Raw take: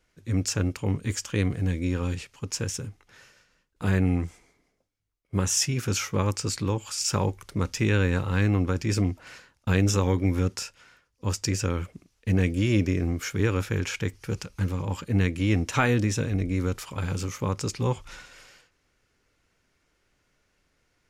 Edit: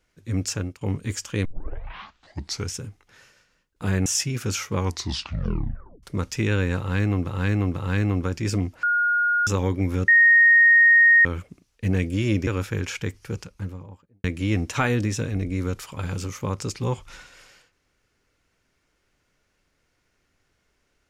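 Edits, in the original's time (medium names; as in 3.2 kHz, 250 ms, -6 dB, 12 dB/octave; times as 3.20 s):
0.52–0.81 s: fade out, to -17 dB
1.45 s: tape start 1.31 s
4.06–5.48 s: delete
6.17 s: tape stop 1.28 s
8.20–8.69 s: loop, 3 plays
9.27–9.91 s: bleep 1.43 kHz -18 dBFS
10.52–11.69 s: bleep 1.86 kHz -11 dBFS
12.91–13.46 s: delete
14.14–15.23 s: studio fade out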